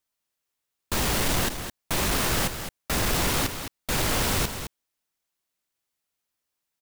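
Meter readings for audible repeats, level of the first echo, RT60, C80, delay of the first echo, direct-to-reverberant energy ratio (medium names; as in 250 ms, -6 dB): 1, -9.0 dB, no reverb, no reverb, 213 ms, no reverb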